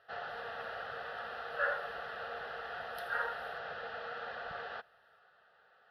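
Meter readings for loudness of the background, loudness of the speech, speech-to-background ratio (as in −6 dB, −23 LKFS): −42.5 LKFS, −38.0 LKFS, 4.5 dB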